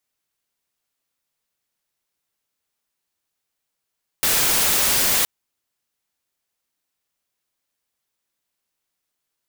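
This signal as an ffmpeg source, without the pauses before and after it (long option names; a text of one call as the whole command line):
ffmpeg -f lavfi -i "anoisesrc=color=white:amplitude=0.206:duration=1.02:sample_rate=44100:seed=1" out.wav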